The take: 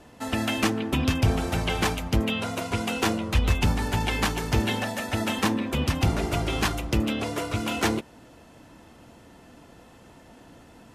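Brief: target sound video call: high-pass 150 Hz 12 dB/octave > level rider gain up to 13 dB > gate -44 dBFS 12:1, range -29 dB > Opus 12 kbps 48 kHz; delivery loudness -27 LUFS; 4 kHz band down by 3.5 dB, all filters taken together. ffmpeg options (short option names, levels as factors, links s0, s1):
-af "highpass=150,equalizer=f=4000:t=o:g=-5,dynaudnorm=m=4.47,agate=range=0.0355:threshold=0.00631:ratio=12,volume=1.33" -ar 48000 -c:a libopus -b:a 12k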